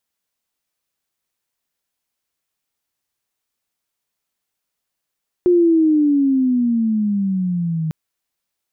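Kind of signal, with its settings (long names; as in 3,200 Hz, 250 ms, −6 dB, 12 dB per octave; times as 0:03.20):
pitch glide with a swell sine, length 2.45 s, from 360 Hz, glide −14.5 semitones, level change −9 dB, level −9.5 dB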